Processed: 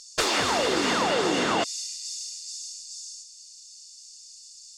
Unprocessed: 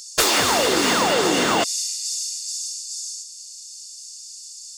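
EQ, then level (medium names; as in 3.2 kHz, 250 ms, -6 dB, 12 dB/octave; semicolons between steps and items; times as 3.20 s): distance through air 57 m; -4.5 dB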